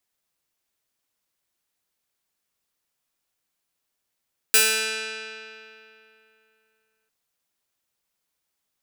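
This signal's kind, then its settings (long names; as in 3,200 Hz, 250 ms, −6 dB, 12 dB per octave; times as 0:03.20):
Karplus-Strong string A3, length 2.55 s, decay 2.90 s, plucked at 0.21, bright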